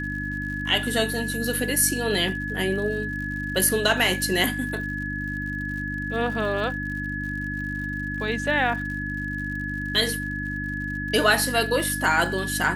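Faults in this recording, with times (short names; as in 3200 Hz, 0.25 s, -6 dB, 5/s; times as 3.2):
crackle 88/s -35 dBFS
hum 50 Hz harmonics 6 -32 dBFS
tone 1700 Hz -30 dBFS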